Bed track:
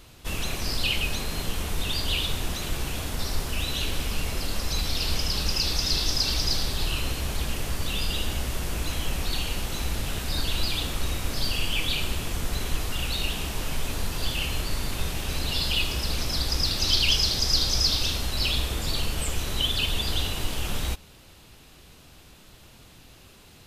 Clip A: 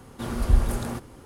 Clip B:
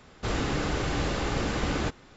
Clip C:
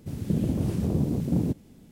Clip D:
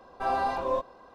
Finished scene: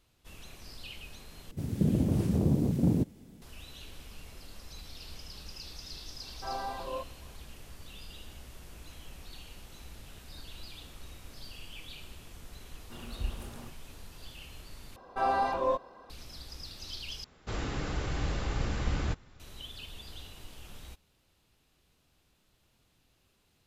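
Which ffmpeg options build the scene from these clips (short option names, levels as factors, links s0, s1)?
-filter_complex "[4:a]asplit=2[s0][s1];[0:a]volume=0.106[s2];[2:a]asubboost=boost=5:cutoff=160[s3];[s2]asplit=4[s4][s5][s6][s7];[s4]atrim=end=1.514[s8];[3:a]atrim=end=1.91,asetpts=PTS-STARTPTS,volume=0.891[s9];[s5]atrim=start=3.416:end=14.964[s10];[s1]atrim=end=1.14,asetpts=PTS-STARTPTS,volume=0.944[s11];[s6]atrim=start=16.096:end=17.244[s12];[s3]atrim=end=2.16,asetpts=PTS-STARTPTS,volume=0.422[s13];[s7]atrim=start=19.396[s14];[s0]atrim=end=1.14,asetpts=PTS-STARTPTS,volume=0.335,afade=t=in:d=0.004:c=hsin,afade=t=out:st=1.136:d=0.004:c=hsin,adelay=6220[s15];[1:a]atrim=end=1.25,asetpts=PTS-STARTPTS,volume=0.158,afade=t=in:d=0.004:c=hsin,afade=t=out:st=1.246:d=0.004:c=hsin,adelay=12710[s16];[s8][s9]acrossfade=d=0.004:c1=hsin:c2=hsin[s17];[s17][s10]acrossfade=d=0.004:c1=hsin:c2=hsin[s18];[s18][s11]acrossfade=d=0.004:c1=hsin:c2=hsin[s19];[s19][s12]acrossfade=d=0.004:c1=hsin:c2=hsin[s20];[s20][s13]acrossfade=d=0.004:c1=hsin:c2=hsin[s21];[s21][s14]acrossfade=d=0.004:c1=hsin:c2=hsin[s22];[s22][s15][s16]amix=inputs=3:normalize=0"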